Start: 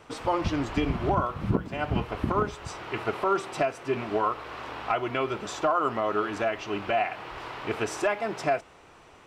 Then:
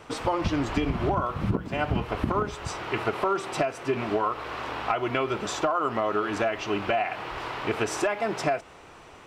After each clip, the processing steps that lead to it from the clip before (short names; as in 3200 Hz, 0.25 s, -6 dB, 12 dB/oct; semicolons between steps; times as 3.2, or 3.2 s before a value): compressor, threshold -26 dBFS, peak gain reduction 7.5 dB; gain +4.5 dB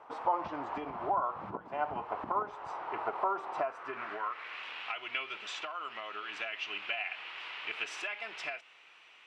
band-pass sweep 880 Hz -> 2700 Hz, 3.51–4.66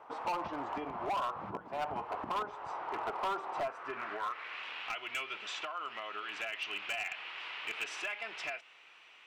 overloaded stage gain 30.5 dB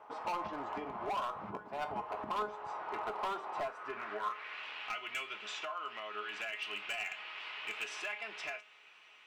resonator 210 Hz, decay 0.25 s, harmonics all, mix 70%; gain +6 dB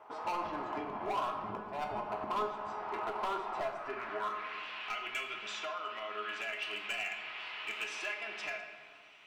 reverb RT60 1.8 s, pre-delay 3 ms, DRR 3 dB